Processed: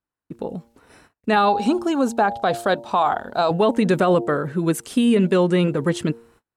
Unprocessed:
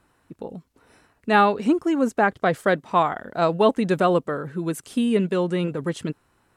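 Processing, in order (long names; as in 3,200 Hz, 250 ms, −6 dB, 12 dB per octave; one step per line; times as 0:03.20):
hum removal 116 Hz, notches 8
noise gate −57 dBFS, range −33 dB
0:01.36–0:03.51: thirty-one-band graphic EQ 160 Hz −11 dB, 315 Hz −7 dB, 500 Hz −3 dB, 800 Hz +5 dB, 2,000 Hz −11 dB, 4,000 Hz +7 dB
brickwall limiter −15 dBFS, peak gain reduction 9 dB
level +6 dB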